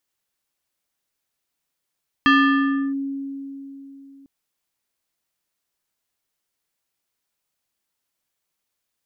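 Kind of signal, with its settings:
two-operator FM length 2.00 s, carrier 275 Hz, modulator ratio 5.38, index 1.4, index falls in 0.68 s linear, decay 3.51 s, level −10.5 dB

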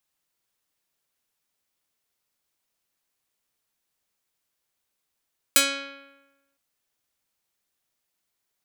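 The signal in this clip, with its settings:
Karplus-Strong string C#4, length 1.01 s, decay 1.11 s, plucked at 0.3, medium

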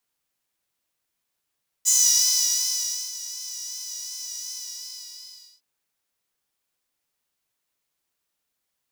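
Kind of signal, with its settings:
subtractive patch with vibrato B5, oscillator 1 saw, sub −7.5 dB, noise −9.5 dB, filter highpass, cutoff 4,900 Hz, Q 7.7, filter envelope 0.5 octaves, attack 28 ms, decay 1.24 s, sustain −17 dB, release 1.09 s, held 2.67 s, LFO 2.7 Hz, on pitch 38 cents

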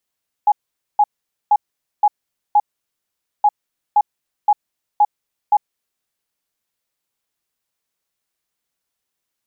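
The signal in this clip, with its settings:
beeps in groups sine 833 Hz, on 0.05 s, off 0.47 s, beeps 5, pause 0.84 s, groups 2, −8.5 dBFS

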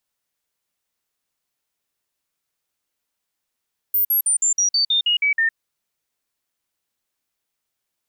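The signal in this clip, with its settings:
stepped sweep 14,500 Hz down, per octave 3, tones 10, 0.11 s, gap 0.05 s −15 dBFS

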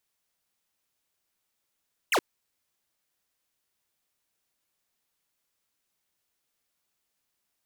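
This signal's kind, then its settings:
single falling chirp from 3,200 Hz, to 280 Hz, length 0.07 s square, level −23 dB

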